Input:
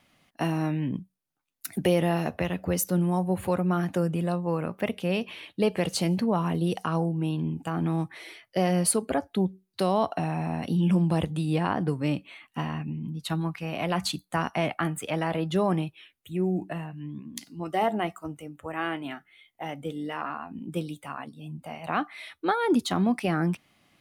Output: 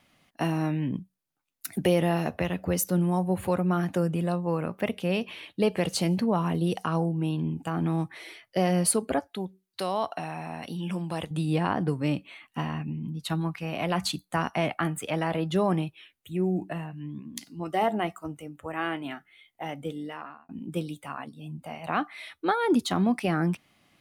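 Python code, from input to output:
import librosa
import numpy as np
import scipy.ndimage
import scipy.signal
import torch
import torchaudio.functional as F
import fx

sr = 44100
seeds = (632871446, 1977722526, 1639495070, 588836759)

y = fx.low_shelf(x, sr, hz=450.0, db=-11.5, at=(9.19, 11.31))
y = fx.edit(y, sr, fx.fade_out_span(start_s=19.87, length_s=0.62), tone=tone)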